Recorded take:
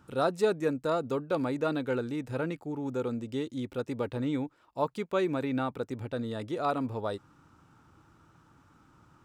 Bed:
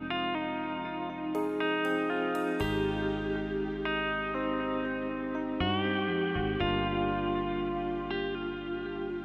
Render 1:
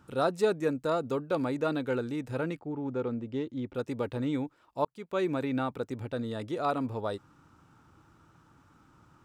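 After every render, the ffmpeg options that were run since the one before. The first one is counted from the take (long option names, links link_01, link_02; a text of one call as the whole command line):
ffmpeg -i in.wav -filter_complex "[0:a]asettb=1/sr,asplit=3[link_01][link_02][link_03];[link_01]atrim=end=2.594[link_04];[link_02]atrim=start=2.59:end=3.75,asetpts=PTS-STARTPTS,afade=type=in:duration=0.004:curve=qsin,afade=type=out:start_time=1.156:duration=0.004:curve=qsin,adynamicsmooth=sensitivity=2.5:basefreq=2600[link_05];[link_03]atrim=start=3.746[link_06];[link_04][link_05]acrossfade=duration=0.004:curve1=hsin:curve2=qsin[link_07];[link_07][link_06]acrossfade=duration=0.004:curve1=qsin:curve2=hsin,asplit=2[link_08][link_09];[link_08]atrim=end=4.85,asetpts=PTS-STARTPTS,afade=type=out:start_time=4.846:duration=0.004:curve=hsin[link_10];[link_09]atrim=start=4.85,asetpts=PTS-STARTPTS,afade=type=in:duration=0.41[link_11];[link_10][link_11]concat=n=2:v=0:a=1" out.wav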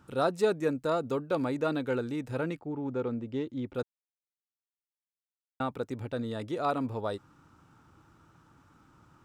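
ffmpeg -i in.wav -filter_complex "[0:a]asplit=3[link_01][link_02][link_03];[link_01]atrim=end=3.83,asetpts=PTS-STARTPTS,afade=type=out:start_time=3.826:duration=0.004:curve=hsin[link_04];[link_02]atrim=start=3.83:end=5.6,asetpts=PTS-STARTPTS,volume=0[link_05];[link_03]atrim=start=5.6,asetpts=PTS-STARTPTS,afade=type=in:duration=0.004:curve=hsin[link_06];[link_04][link_05][link_06]concat=n=3:v=0:a=1" out.wav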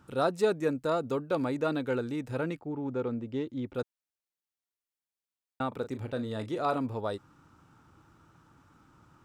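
ffmpeg -i in.wav -filter_complex "[0:a]asettb=1/sr,asplit=3[link_01][link_02][link_03];[link_01]atrim=end=5.684[link_04];[link_02]atrim=start=5.68:end=6.77,asetpts=PTS-STARTPTS,afade=type=in:duration=0.004:curve=qsin,afade=type=out:start_time=1.086:duration=0.004:curve=qsin,asplit=2[link_05][link_06];[link_06]adelay=37,volume=-11dB[link_07];[link_05][link_07]amix=inputs=2:normalize=0,atrim=end_sample=48069[link_08];[link_03]atrim=start=6.766[link_09];[link_04][link_08]acrossfade=duration=0.004:curve1=hsin:curve2=qsin[link_10];[link_10][link_09]acrossfade=duration=0.004:curve1=qsin:curve2=hsin" out.wav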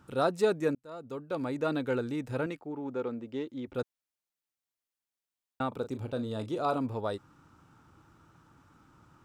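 ffmpeg -i in.wav -filter_complex "[0:a]asettb=1/sr,asplit=3[link_01][link_02][link_03];[link_01]atrim=end=2.464[link_04];[link_02]atrim=start=2.46:end=3.68,asetpts=PTS-STARTPTS,afade=type=in:duration=0.004:curve=qsin,afade=type=out:start_time=1.216:duration=0.004:curve=qsin,equalizer=frequency=76:width=0.6:gain=-13[link_05];[link_03]atrim=start=3.676[link_06];[link_04][link_05]acrossfade=duration=0.004:curve1=hsin:curve2=qsin[link_07];[link_07][link_06]acrossfade=duration=0.004:curve1=qsin:curve2=hsin,asettb=1/sr,asplit=3[link_08][link_09][link_10];[link_08]atrim=end=5.714[link_11];[link_09]atrim=start=5.71:end=6.82,asetpts=PTS-STARTPTS,afade=type=in:duration=0.004:curve=qsin,afade=type=out:start_time=1.106:duration=0.004:curve=qsin,equalizer=frequency=1900:width_type=o:width=0.48:gain=-9[link_12];[link_10]atrim=start=6.816[link_13];[link_11][link_12]acrossfade=duration=0.004:curve1=hsin:curve2=qsin[link_14];[link_14][link_13]acrossfade=duration=0.004:curve1=qsin:curve2=hsin,asplit=2[link_15][link_16];[link_15]atrim=end=0.75,asetpts=PTS-STARTPTS,afade=type=out:start_time=0.746:duration=0.004:curve=hsin[link_17];[link_16]atrim=start=0.75,asetpts=PTS-STARTPTS,afade=type=in:duration=1.01[link_18];[link_17][link_18]concat=n=2:v=0:a=1" out.wav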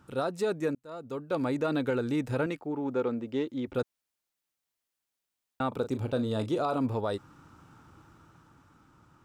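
ffmpeg -i in.wav -af "dynaudnorm=framelen=110:gausssize=21:maxgain=5dB,alimiter=limit=-20dB:level=0:latency=1:release=115" out.wav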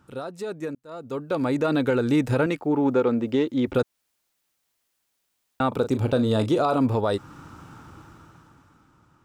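ffmpeg -i in.wav -af "alimiter=limit=-24dB:level=0:latency=1:release=284,dynaudnorm=framelen=200:gausssize=13:maxgain=11dB" out.wav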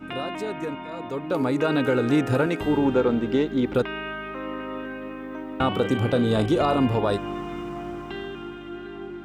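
ffmpeg -i in.wav -i bed.wav -filter_complex "[1:a]volume=-1dB[link_01];[0:a][link_01]amix=inputs=2:normalize=0" out.wav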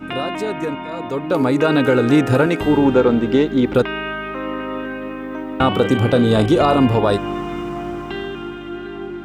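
ffmpeg -i in.wav -af "volume=7dB" out.wav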